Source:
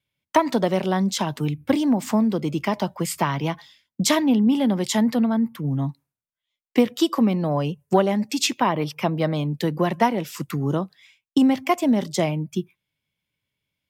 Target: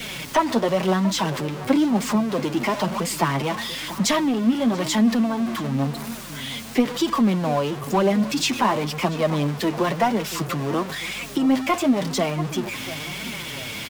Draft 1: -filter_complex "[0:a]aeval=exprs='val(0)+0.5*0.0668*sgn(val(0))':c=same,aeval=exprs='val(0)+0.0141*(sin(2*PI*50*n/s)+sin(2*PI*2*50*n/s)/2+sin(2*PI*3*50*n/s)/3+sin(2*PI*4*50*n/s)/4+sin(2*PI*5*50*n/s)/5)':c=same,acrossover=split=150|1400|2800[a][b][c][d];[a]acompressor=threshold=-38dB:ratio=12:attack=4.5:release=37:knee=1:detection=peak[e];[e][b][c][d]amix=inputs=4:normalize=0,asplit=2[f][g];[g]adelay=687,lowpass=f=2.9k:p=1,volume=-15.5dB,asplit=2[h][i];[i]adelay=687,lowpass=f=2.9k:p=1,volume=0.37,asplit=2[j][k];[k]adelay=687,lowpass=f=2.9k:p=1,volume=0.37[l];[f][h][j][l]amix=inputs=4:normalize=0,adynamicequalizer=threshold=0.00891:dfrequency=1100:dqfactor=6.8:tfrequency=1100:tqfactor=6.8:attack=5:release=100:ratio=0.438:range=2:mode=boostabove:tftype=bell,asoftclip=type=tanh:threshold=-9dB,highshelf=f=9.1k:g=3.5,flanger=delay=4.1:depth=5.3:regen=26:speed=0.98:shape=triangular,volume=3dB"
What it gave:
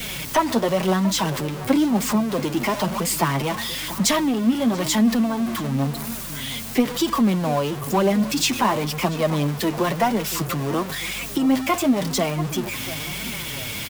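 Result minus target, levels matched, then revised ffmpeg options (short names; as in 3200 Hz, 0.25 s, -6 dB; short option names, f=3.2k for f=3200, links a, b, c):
compressor: peak gain reduction -8 dB; 8000 Hz band +3.5 dB
-filter_complex "[0:a]aeval=exprs='val(0)+0.5*0.0668*sgn(val(0))':c=same,aeval=exprs='val(0)+0.0141*(sin(2*PI*50*n/s)+sin(2*PI*2*50*n/s)/2+sin(2*PI*3*50*n/s)/3+sin(2*PI*4*50*n/s)/4+sin(2*PI*5*50*n/s)/5)':c=same,acrossover=split=150|1400|2800[a][b][c][d];[a]acompressor=threshold=-46.5dB:ratio=12:attack=4.5:release=37:knee=1:detection=peak[e];[e][b][c][d]amix=inputs=4:normalize=0,asplit=2[f][g];[g]adelay=687,lowpass=f=2.9k:p=1,volume=-15.5dB,asplit=2[h][i];[i]adelay=687,lowpass=f=2.9k:p=1,volume=0.37,asplit=2[j][k];[k]adelay=687,lowpass=f=2.9k:p=1,volume=0.37[l];[f][h][j][l]amix=inputs=4:normalize=0,adynamicequalizer=threshold=0.00891:dfrequency=1100:dqfactor=6.8:tfrequency=1100:tqfactor=6.8:attack=5:release=100:ratio=0.438:range=2:mode=boostabove:tftype=bell,asoftclip=type=tanh:threshold=-9dB,highshelf=f=9.1k:g=-7.5,flanger=delay=4.1:depth=5.3:regen=26:speed=0.98:shape=triangular,volume=3dB"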